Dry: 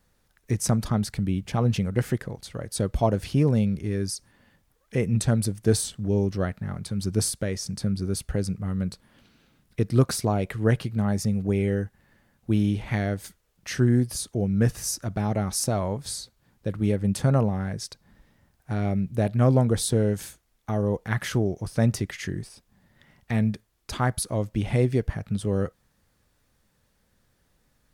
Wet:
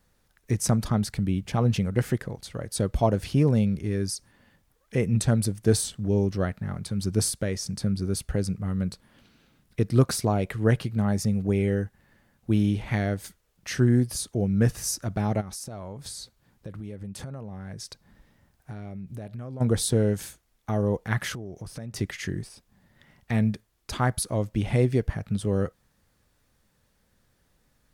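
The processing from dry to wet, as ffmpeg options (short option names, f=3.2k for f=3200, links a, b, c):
-filter_complex "[0:a]asplit=3[a][b][c];[a]afade=t=out:st=15.4:d=0.02[d];[b]acompressor=threshold=-34dB:ratio=8:attack=3.2:release=140:knee=1:detection=peak,afade=t=in:st=15.4:d=0.02,afade=t=out:st=19.6:d=0.02[e];[c]afade=t=in:st=19.6:d=0.02[f];[d][e][f]amix=inputs=3:normalize=0,asettb=1/sr,asplit=3[g][h][i];[g]atrim=end=21.334[j];[h]atrim=start=21.33:end=21.96,asetpts=PTS-STARTPTS,afade=t=in:d=0.004:c=qsin,afade=t=out:st=0.626:d=0.004:c=qsin,acompressor=threshold=-33dB:ratio=10:attack=3.2:release=140:knee=1:detection=peak[k];[i]atrim=start=21.956[l];[j][k]acrossfade=d=0.004:c1=hsin:c2=qsin[m];[m][l]acrossfade=d=0.004:c1=qsin:c2=hsin"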